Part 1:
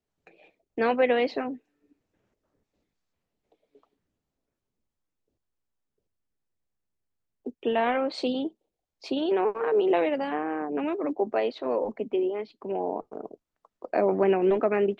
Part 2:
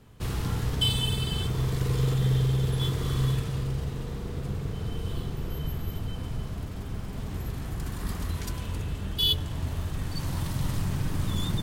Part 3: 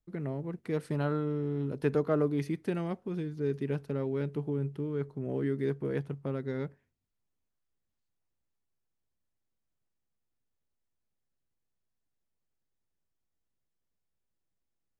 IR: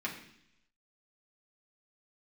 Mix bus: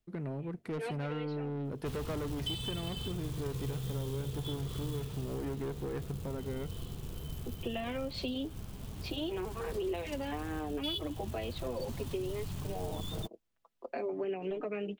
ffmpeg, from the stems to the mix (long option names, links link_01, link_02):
-filter_complex "[0:a]acrossover=split=430|3000[link_01][link_02][link_03];[link_02]acompressor=threshold=-32dB:ratio=6[link_04];[link_01][link_04][link_03]amix=inputs=3:normalize=0,equalizer=frequency=3000:width=1.5:gain=7.5,asplit=2[link_05][link_06];[link_06]adelay=5.5,afreqshift=0.51[link_07];[link_05][link_07]amix=inputs=2:normalize=1,volume=-2.5dB[link_08];[1:a]aemphasis=mode=reproduction:type=75fm,acrusher=bits=7:mode=log:mix=0:aa=0.000001,aexciter=amount=2.5:drive=6.8:freq=2700,adelay=1650,volume=-10dB[link_09];[2:a]asoftclip=type=tanh:threshold=-31dB,volume=0.5dB,asplit=2[link_10][link_11];[link_11]apad=whole_len=661548[link_12];[link_08][link_12]sidechaincompress=threshold=-44dB:ratio=8:attack=16:release=140[link_13];[link_13][link_09][link_10]amix=inputs=3:normalize=0,acompressor=threshold=-34dB:ratio=3"